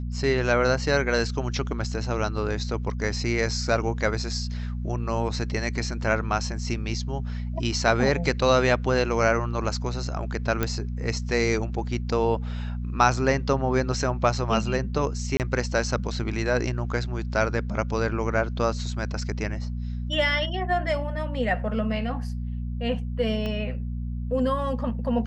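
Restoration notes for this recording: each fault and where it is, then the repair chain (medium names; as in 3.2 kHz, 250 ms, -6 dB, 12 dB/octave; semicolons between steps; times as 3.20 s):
hum 60 Hz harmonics 4 -30 dBFS
10.63 s: pop -10 dBFS
15.37–15.40 s: dropout 28 ms
23.46 s: pop -19 dBFS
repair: de-click; de-hum 60 Hz, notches 4; interpolate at 15.37 s, 28 ms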